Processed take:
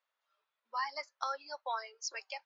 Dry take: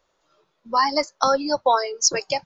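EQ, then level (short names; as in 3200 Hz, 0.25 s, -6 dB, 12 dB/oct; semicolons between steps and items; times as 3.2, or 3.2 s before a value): Butterworth band-pass 1100 Hz, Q 0.57; differentiator; 0.0 dB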